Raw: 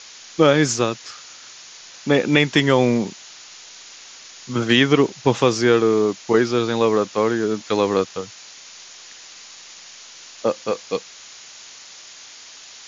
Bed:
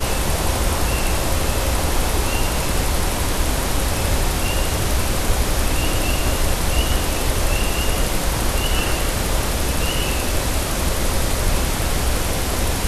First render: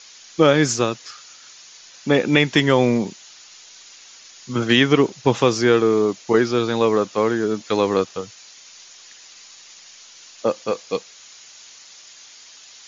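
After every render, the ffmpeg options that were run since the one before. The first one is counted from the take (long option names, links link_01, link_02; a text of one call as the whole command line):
ffmpeg -i in.wav -af "afftdn=noise_reduction=6:noise_floor=-42" out.wav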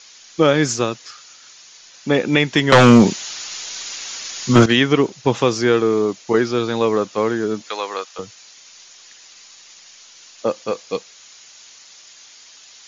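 ffmpeg -i in.wav -filter_complex "[0:a]asettb=1/sr,asplit=3[link_01][link_02][link_03];[link_01]atrim=end=2.724[link_04];[link_02]atrim=start=2.72:end=4.66,asetpts=PTS-STARTPTS,afade=type=in:duration=0.004:curve=qsin,afade=type=out:start_time=1.936:duration=0.004:curve=qsin,aeval=exprs='0.668*sin(PI/2*3.16*val(0)/0.668)':channel_layout=same[link_05];[link_03]atrim=start=4.656[link_06];[link_04][link_05]acrossfade=duration=0.004:curve1=hsin:curve2=qsin[link_07];[link_07][link_06]acrossfade=duration=0.004:curve1=qsin:curve2=hsin,asettb=1/sr,asplit=3[link_08][link_09][link_10];[link_08]atrim=end=7.694[link_11];[link_09]atrim=start=7.69:end=8.19,asetpts=PTS-STARTPTS,afade=type=in:duration=0.004:curve=qsin,afade=type=out:start_time=0.496:duration=0.004:curve=qsin,highpass=790[link_12];[link_10]atrim=start=8.186[link_13];[link_11][link_12]acrossfade=duration=0.004:curve1=hsin:curve2=qsin[link_14];[link_14][link_13]acrossfade=duration=0.004:curve1=qsin:curve2=hsin" out.wav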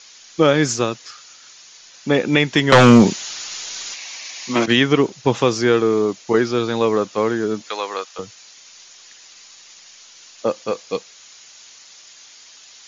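ffmpeg -i in.wav -filter_complex "[0:a]asettb=1/sr,asplit=3[link_01][link_02][link_03];[link_01]atrim=end=3.944[link_04];[link_02]atrim=start=3.94:end=4.68,asetpts=PTS-STARTPTS,afade=type=in:duration=0.004:curve=qsin,afade=type=out:start_time=0.736:duration=0.004:curve=qsin,highpass=360,equalizer=frequency=430:width_type=q:width=4:gain=-10,equalizer=frequency=1400:width_type=q:width=4:gain=-10,equalizer=frequency=2300:width_type=q:width=4:gain=5,equalizer=frequency=3300:width_type=q:width=4:gain=-4,equalizer=frequency=4900:width_type=q:width=4:gain=-3,lowpass=frequency=6200:width=0.5412,lowpass=frequency=6200:width=1.3066[link_05];[link_03]atrim=start=4.676[link_06];[link_04][link_05]acrossfade=duration=0.004:curve1=hsin:curve2=qsin[link_07];[link_07][link_06]acrossfade=duration=0.004:curve1=qsin:curve2=hsin" out.wav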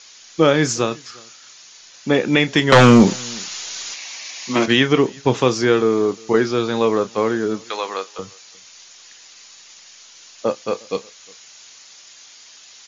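ffmpeg -i in.wav -filter_complex "[0:a]asplit=2[link_01][link_02];[link_02]adelay=31,volume=-13dB[link_03];[link_01][link_03]amix=inputs=2:normalize=0,asplit=2[link_04][link_05];[link_05]adelay=355.7,volume=-26dB,highshelf=frequency=4000:gain=-8[link_06];[link_04][link_06]amix=inputs=2:normalize=0" out.wav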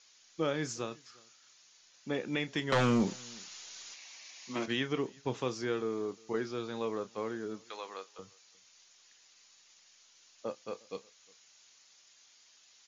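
ffmpeg -i in.wav -af "volume=-18dB" out.wav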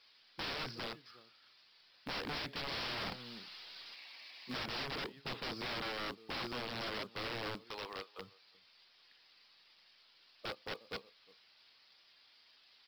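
ffmpeg -i in.wav -af "aresample=11025,aeval=exprs='(mod(56.2*val(0)+1,2)-1)/56.2':channel_layout=same,aresample=44100,acrusher=bits=6:mode=log:mix=0:aa=0.000001" out.wav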